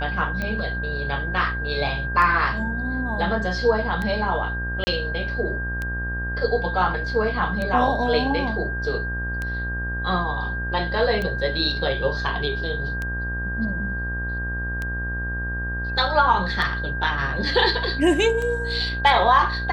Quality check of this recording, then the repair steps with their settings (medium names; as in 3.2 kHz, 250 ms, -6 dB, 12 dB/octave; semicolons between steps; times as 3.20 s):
buzz 60 Hz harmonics 32 -29 dBFS
tick 33 1/3 rpm -15 dBFS
whine 1.6 kHz -28 dBFS
4.84–4.87 s: dropout 30 ms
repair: de-click; de-hum 60 Hz, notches 32; band-stop 1.6 kHz, Q 30; interpolate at 4.84 s, 30 ms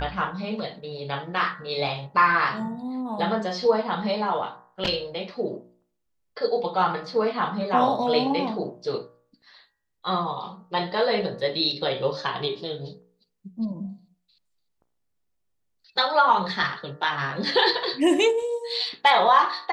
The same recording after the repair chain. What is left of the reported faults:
nothing left